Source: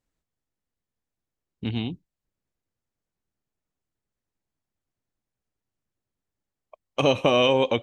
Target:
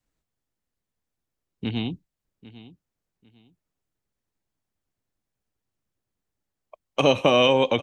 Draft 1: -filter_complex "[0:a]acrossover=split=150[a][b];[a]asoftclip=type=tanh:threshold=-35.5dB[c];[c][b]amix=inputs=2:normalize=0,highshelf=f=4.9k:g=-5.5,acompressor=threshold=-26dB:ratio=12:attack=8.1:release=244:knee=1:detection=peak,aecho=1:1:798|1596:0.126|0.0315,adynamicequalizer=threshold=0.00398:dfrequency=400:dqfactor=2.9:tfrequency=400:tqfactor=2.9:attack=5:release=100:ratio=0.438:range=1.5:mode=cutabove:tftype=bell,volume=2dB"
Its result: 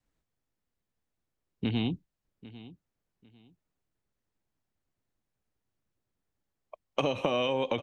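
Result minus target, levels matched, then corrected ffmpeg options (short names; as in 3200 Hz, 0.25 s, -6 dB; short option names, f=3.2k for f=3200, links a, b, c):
compressor: peak gain reduction +12.5 dB; 8000 Hz band -3.5 dB
-filter_complex "[0:a]acrossover=split=150[a][b];[a]asoftclip=type=tanh:threshold=-35.5dB[c];[c][b]amix=inputs=2:normalize=0,aecho=1:1:798|1596:0.126|0.0315,adynamicequalizer=threshold=0.00398:dfrequency=400:dqfactor=2.9:tfrequency=400:tqfactor=2.9:attack=5:release=100:ratio=0.438:range=1.5:mode=cutabove:tftype=bell,volume=2dB"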